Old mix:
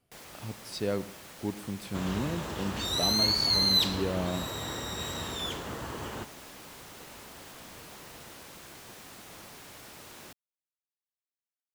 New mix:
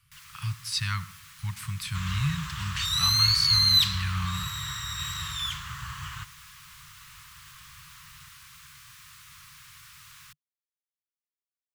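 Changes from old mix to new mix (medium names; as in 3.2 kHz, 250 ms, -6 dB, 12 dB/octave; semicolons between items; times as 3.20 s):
speech +11.5 dB; second sound +4.5 dB; master: add Chebyshev band-stop 150–1100 Hz, order 4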